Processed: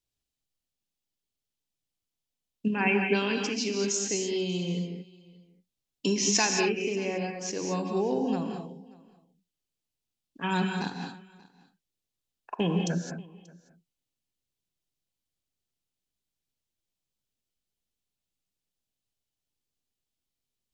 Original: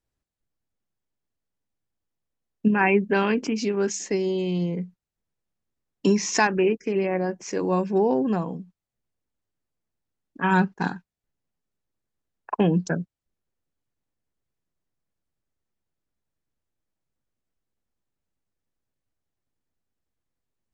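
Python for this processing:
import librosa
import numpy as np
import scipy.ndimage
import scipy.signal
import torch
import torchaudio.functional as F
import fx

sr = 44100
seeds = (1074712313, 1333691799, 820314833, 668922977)

y = fx.high_shelf_res(x, sr, hz=2300.0, db=8.5, q=1.5)
y = y + 10.0 ** (-23.5 / 20.0) * np.pad(y, (int(584 * sr / 1000.0), 0))[:len(y)]
y = fx.rev_gated(y, sr, seeds[0], gate_ms=240, shape='rising', drr_db=3.0)
y = y * 10.0 ** (-7.5 / 20.0)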